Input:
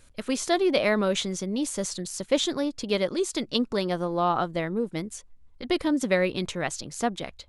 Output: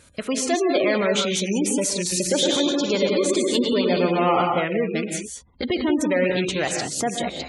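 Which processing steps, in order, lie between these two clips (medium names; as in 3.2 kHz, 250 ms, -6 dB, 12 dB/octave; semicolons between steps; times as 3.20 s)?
rattle on loud lows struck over -34 dBFS, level -27 dBFS; recorder AGC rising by 9.4 dB/s; dynamic bell 170 Hz, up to -5 dB, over -40 dBFS, Q 0.77; saturation -23 dBFS, distortion -11 dB; high-pass 70 Hz 12 dB/octave; 2.01–4.41 s: reverse bouncing-ball echo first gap 110 ms, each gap 1.25×, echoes 5; gated-style reverb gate 220 ms rising, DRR 3 dB; spectral gate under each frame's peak -25 dB strong; trim +6.5 dB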